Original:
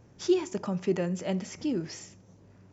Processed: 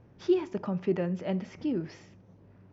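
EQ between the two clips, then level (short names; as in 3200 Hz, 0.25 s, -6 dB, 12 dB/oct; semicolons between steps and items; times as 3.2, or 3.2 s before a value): air absorption 250 m; 0.0 dB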